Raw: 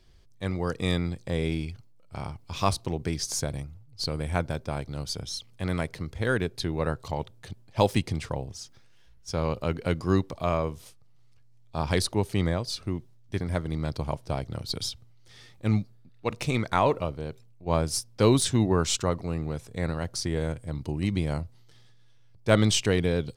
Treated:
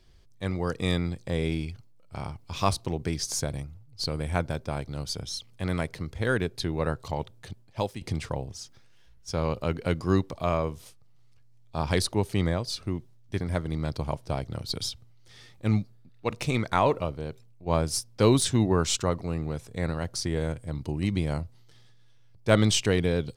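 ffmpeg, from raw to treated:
-filter_complex "[0:a]asplit=2[s0][s1];[s0]atrim=end=8.01,asetpts=PTS-STARTPTS,afade=t=out:st=7.48:d=0.53:silence=0.149624[s2];[s1]atrim=start=8.01,asetpts=PTS-STARTPTS,afade=t=in:d=0.004:c=hsin:silence=0.149624[s3];[s2][s3]concat=n=2:v=0:a=1"

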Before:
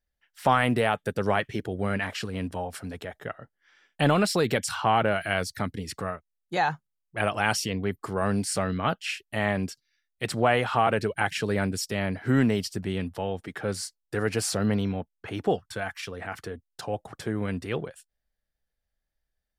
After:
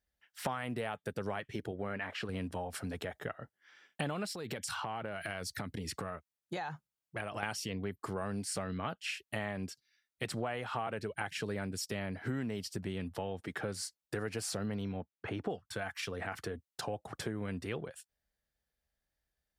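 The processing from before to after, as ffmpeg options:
-filter_complex "[0:a]asettb=1/sr,asplit=3[s0][s1][s2];[s0]atrim=end=1.714[s3];[s1]atrim=start=1.71:end=2.29,asetpts=PTS-STARTPTS,afade=t=in:d=0.004:c=qsin,afade=t=out:st=0.576:d=0.004:c=qsin,bass=f=250:g=-6,treble=f=4000:g=-14[s4];[s2]atrim=start=2.286[s5];[s3][s4]acrossfade=d=0.004:c1=hsin:c2=qsin[s6];[s6][s5]acrossfade=d=0.004:c1=qsin:c2=hsin,asettb=1/sr,asplit=3[s7][s8][s9];[s7]atrim=end=4.334[s10];[s8]atrim=start=4.33:end=7.43,asetpts=PTS-STARTPTS,afade=t=in:d=0.004:c=qsin,afade=t=out:st=3.096:d=0.004:c=qsin,acompressor=threshold=0.0224:ratio=4:attack=3.2:release=140:knee=1:detection=peak[s11];[s9]atrim=start=7.426[s12];[s10][s11]acrossfade=d=0.004:c1=hsin:c2=qsin[s13];[s13][s12]acrossfade=d=0.004:c1=qsin:c2=hsin,asettb=1/sr,asplit=3[s14][s15][s16];[s14]atrim=end=14.974[s17];[s15]atrim=start=14.97:end=15.5,asetpts=PTS-STARTPTS,afade=t=in:d=0.004:c=qsin,afade=t=out:st=0.526:d=0.004:c=qsin,highshelf=f=4300:g=-11.5[s18];[s16]atrim=start=15.496[s19];[s17][s18]acrossfade=d=0.004:c1=hsin:c2=qsin[s20];[s20][s19]acrossfade=d=0.004:c1=qsin:c2=hsin,highpass=48,acompressor=threshold=0.0178:ratio=5"

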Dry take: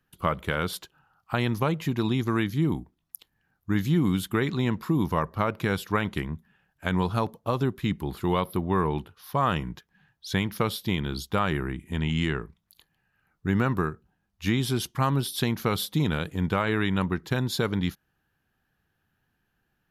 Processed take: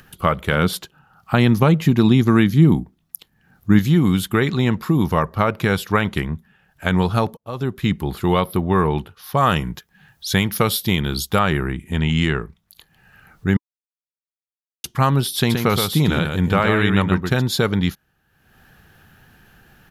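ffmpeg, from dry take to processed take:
-filter_complex "[0:a]asettb=1/sr,asplit=3[s0][s1][s2];[s0]atrim=end=0.524[s3];[s1]atrim=start=0.52:end=3.79,asetpts=PTS-STARTPTS,afade=t=in:d=0.004:c=qsin,afade=t=out:st=3.266:d=0.004:c=qsin,equalizer=f=200:t=o:w=1.5:g=6.5[s4];[s2]atrim=start=3.786[s5];[s3][s4]acrossfade=d=0.004:c1=hsin:c2=qsin[s6];[s6][s5]acrossfade=d=0.004:c1=qsin:c2=hsin,asettb=1/sr,asplit=3[s7][s8][s9];[s7]atrim=end=9.374[s10];[s8]atrim=start=9.37:end=11.39,asetpts=PTS-STARTPTS,afade=t=in:d=0.004:c=qsin,afade=t=out:st=2.016:d=0.004:c=qsin,highshelf=f=6500:g=9.5[s11];[s9]atrim=start=11.386[s12];[s10][s11]acrossfade=d=0.004:c1=hsin:c2=qsin[s13];[s13][s12]acrossfade=d=0.004:c1=qsin:c2=hsin,asplit=3[s14][s15][s16];[s14]afade=t=out:st=15.49:d=0.02[s17];[s15]aecho=1:1:123:0.531,afade=t=in:st=15.49:d=0.02,afade=t=out:st=17.41:d=0.02[s18];[s16]afade=t=in:st=17.41:d=0.02[s19];[s17][s18][s19]amix=inputs=3:normalize=0,asplit=4[s20][s21][s22][s23];[s20]atrim=end=7.37,asetpts=PTS-STARTPTS,afade=t=out:st=7.366:d=0.004:c=hsin[s24];[s21]atrim=start=7.37:end=13.57,asetpts=PTS-STARTPTS,afade=t=in:d=0.49,afade=t=out:st=6.196:d=0.004:c=hsin[s25];[s22]atrim=start=13.57:end=14.84,asetpts=PTS-STARTPTS,volume=0[s26];[s23]atrim=start=14.84,asetpts=PTS-STARTPTS,afade=t=in:d=0.004:c=hsin[s27];[s24][s25][s26][s27]concat=n=4:v=0:a=1,equalizer=f=300:t=o:w=0.35:g=-3.5,bandreject=f=1000:w=15,acompressor=mode=upward:threshold=0.00631:ratio=2.5,volume=2.51"

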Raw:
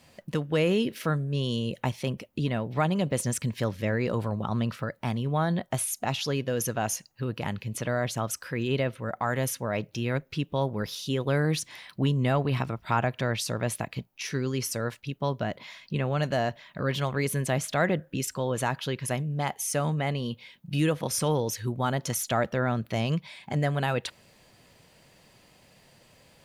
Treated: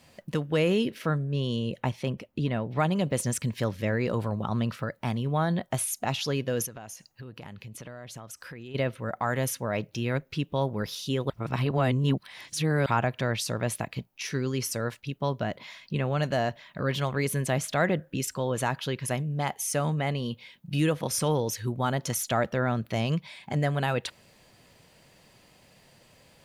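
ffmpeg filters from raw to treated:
-filter_complex "[0:a]asettb=1/sr,asplit=3[s0][s1][s2];[s0]atrim=end=0.904[s3];[s1]atrim=start=0.9:end=2.79,asetpts=PTS-STARTPTS,afade=t=in:d=0.004:c=qsin,afade=t=out:st=1.886:d=0.004:c=qsin,highshelf=f=4700:g=-8[s4];[s2]atrim=start=2.786[s5];[s3][s4]acrossfade=d=0.004:c1=hsin:c2=qsin[s6];[s6][s5]acrossfade=d=0.004:c1=qsin:c2=hsin,asplit=3[s7][s8][s9];[s7]afade=t=out:st=6.65:d=0.02[s10];[s8]acompressor=threshold=0.0112:ratio=6:attack=3.2:release=140:knee=1:detection=peak,afade=t=in:st=6.65:d=0.02,afade=t=out:st=8.74:d=0.02[s11];[s9]afade=t=in:st=8.74:d=0.02[s12];[s10][s11][s12]amix=inputs=3:normalize=0,asplit=3[s13][s14][s15];[s13]atrim=end=11.302[s16];[s14]atrim=start=11.298:end=12.862,asetpts=PTS-STARTPTS,areverse[s17];[s15]atrim=start=12.858[s18];[s16][s17]acrossfade=d=0.004:c1=hsin:c2=hsin[s19];[s19][s18]acrossfade=d=0.004:c1=hsin:c2=hsin"

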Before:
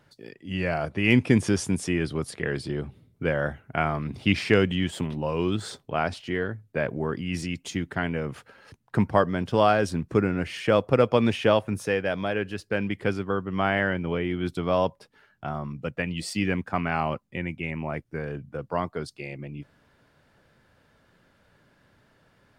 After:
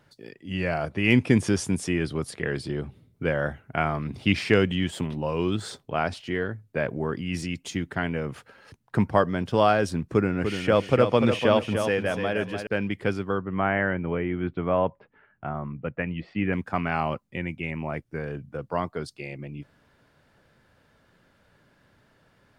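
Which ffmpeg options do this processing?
-filter_complex "[0:a]asettb=1/sr,asplit=3[s0][s1][s2];[s0]atrim=end=10.124[s3];[s1]atrim=start=10.12:end=12.67,asetpts=PTS-STARTPTS,afade=t=in:d=0.004:c=qsin,afade=t=out:st=2.546:d=0.004:c=qsin,aecho=1:1:295|590|885:0.447|0.112|0.0279,atrim=end_sample=112455[s4];[s2]atrim=start=12.666[s5];[s3][s4]acrossfade=d=0.004:c1=hsin:c2=qsin[s6];[s6][s5]acrossfade=d=0.004:c1=qsin:c2=hsin,asettb=1/sr,asplit=3[s7][s8][s9];[s7]atrim=end=13.384[s10];[s8]atrim=start=13.38:end=16.53,asetpts=PTS-STARTPTS,afade=t=in:d=0.004:c=qsin,afade=t=out:st=3.146:d=0.004:c=qsin,lowpass=f=2400:w=0.5412,lowpass=f=2400:w=1.3066[s11];[s9]atrim=start=16.526[s12];[s10][s11]acrossfade=d=0.004:c1=hsin:c2=qsin[s13];[s13][s12]acrossfade=d=0.004:c1=qsin:c2=hsin"

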